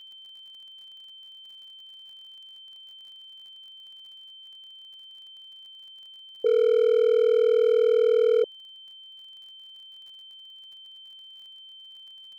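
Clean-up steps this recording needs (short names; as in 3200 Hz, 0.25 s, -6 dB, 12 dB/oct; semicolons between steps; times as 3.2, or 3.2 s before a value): clip repair -15.5 dBFS; de-click; notch 3100 Hz, Q 30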